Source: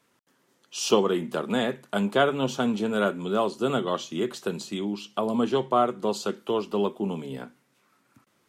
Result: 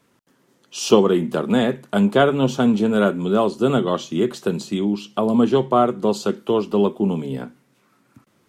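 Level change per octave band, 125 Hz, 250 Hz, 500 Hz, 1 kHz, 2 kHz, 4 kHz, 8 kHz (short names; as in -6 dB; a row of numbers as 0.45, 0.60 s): +10.0, +9.0, +7.0, +4.5, +3.5, +3.0, +3.0 dB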